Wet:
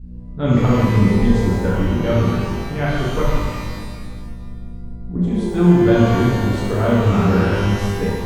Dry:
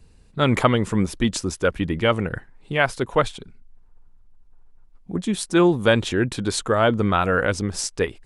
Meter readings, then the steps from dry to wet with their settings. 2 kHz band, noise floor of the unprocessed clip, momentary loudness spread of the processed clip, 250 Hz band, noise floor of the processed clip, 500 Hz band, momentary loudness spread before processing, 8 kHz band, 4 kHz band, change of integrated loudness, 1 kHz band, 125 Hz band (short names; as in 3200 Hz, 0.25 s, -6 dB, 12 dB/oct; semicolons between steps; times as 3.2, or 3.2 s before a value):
-2.0 dB, -52 dBFS, 20 LU, +6.5 dB, -32 dBFS, +2.0 dB, 9 LU, -7.5 dB, -3.5 dB, +4.5 dB, 0.0 dB, +9.5 dB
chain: hum 60 Hz, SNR 19 dB; RIAA curve playback; shimmer reverb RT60 1.6 s, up +12 st, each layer -8 dB, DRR -7 dB; gain -11 dB